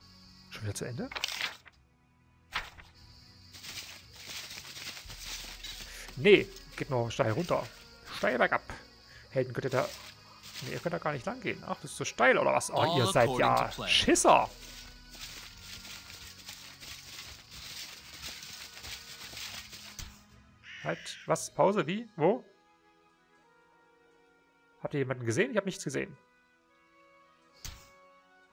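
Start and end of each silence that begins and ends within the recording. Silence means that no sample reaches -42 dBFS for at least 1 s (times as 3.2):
22.4–24.84
26.12–27.65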